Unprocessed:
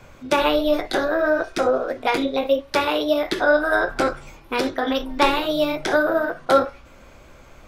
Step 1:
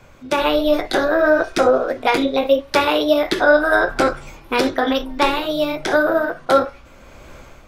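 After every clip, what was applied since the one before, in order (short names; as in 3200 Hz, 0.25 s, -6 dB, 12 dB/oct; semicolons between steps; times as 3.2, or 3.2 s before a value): AGC gain up to 9.5 dB; gain -1 dB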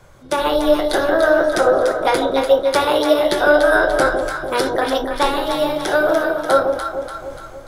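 thirty-one-band EQ 250 Hz -9 dB, 2500 Hz -10 dB, 10000 Hz +10 dB; echo with dull and thin repeats by turns 0.146 s, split 870 Hz, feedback 71%, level -3.5 dB; AAC 128 kbps 44100 Hz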